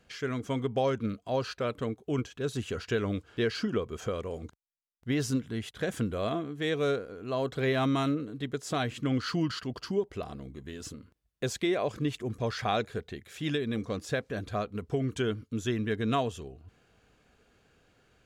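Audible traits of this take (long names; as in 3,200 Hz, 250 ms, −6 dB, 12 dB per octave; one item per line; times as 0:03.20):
background noise floor −71 dBFS
spectral slope −5.0 dB per octave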